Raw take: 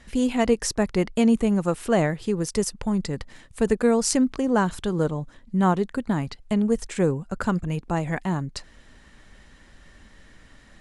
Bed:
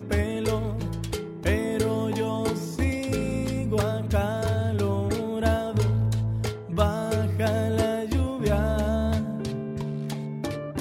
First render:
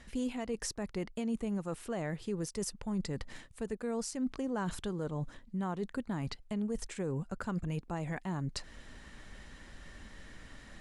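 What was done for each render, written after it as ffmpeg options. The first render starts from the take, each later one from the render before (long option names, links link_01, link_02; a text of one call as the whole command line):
ffmpeg -i in.wav -af "areverse,acompressor=threshold=-31dB:ratio=6,areverse,alimiter=level_in=2.5dB:limit=-24dB:level=0:latency=1:release=148,volume=-2.5dB" out.wav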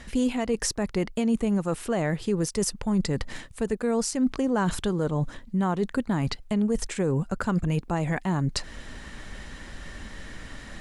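ffmpeg -i in.wav -af "volume=10.5dB" out.wav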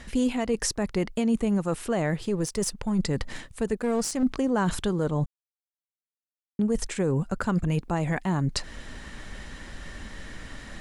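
ffmpeg -i in.wav -filter_complex "[0:a]asettb=1/sr,asplit=3[link_01][link_02][link_03];[link_01]atrim=end=2.224[link_04];[link_02]atrim=start=2.22:end=2.99,asetpts=PTS-STARTPTS,afade=type=in:duration=0.004:curve=qsin,afade=type=out:start_time=0.766:duration=0.004:curve=qsin,aeval=exprs='if(lt(val(0),0),0.708*val(0),val(0))':channel_layout=same[link_05];[link_03]atrim=start=2.986[link_06];[link_04][link_05]acrossfade=duration=0.004:curve1=hsin:curve2=qsin[link_07];[link_07][link_06]acrossfade=duration=0.004:curve1=qsin:curve2=hsin,asettb=1/sr,asplit=3[link_08][link_09][link_10];[link_08]atrim=end=3.774[link_11];[link_09]atrim=start=3.77:end=4.23,asetpts=PTS-STARTPTS,afade=type=in:duration=0.004:curve=qsin,afade=type=out:start_time=0.456:duration=0.004:curve=qsin,aeval=exprs='clip(val(0),-1,0.0447)':channel_layout=same[link_12];[link_10]atrim=start=4.226[link_13];[link_11][link_12]acrossfade=duration=0.004:curve1=hsin:curve2=qsin[link_14];[link_14][link_13]acrossfade=duration=0.004:curve1=qsin:curve2=hsin,asplit=3[link_15][link_16][link_17];[link_15]atrim=end=5.26,asetpts=PTS-STARTPTS,afade=type=out:start_time=5.256:duration=0.004:curve=hsin[link_18];[link_16]atrim=start=5.26:end=6.59,asetpts=PTS-STARTPTS,volume=0[link_19];[link_17]atrim=start=6.59,asetpts=PTS-STARTPTS,afade=type=in:duration=0.004:curve=hsin[link_20];[link_18][link_19][link_20]concat=n=3:v=0:a=1" out.wav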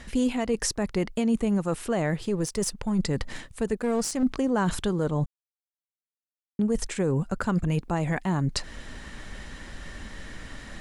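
ffmpeg -i in.wav -af anull out.wav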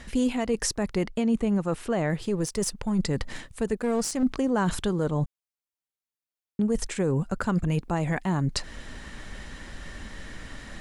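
ffmpeg -i in.wav -filter_complex "[0:a]asettb=1/sr,asplit=3[link_01][link_02][link_03];[link_01]atrim=end=1.094[link_04];[link_02]atrim=start=1.09:end=2.1,asetpts=PTS-STARTPTS,afade=type=in:duration=0.004:curve=qsin,afade=type=out:start_time=1.006:duration=0.004:curve=qsin,highshelf=frequency=6800:gain=-8.5[link_05];[link_03]atrim=start=2.096[link_06];[link_04][link_05]acrossfade=duration=0.004:curve1=hsin:curve2=qsin[link_07];[link_07][link_06]acrossfade=duration=0.004:curve1=qsin:curve2=hsin" out.wav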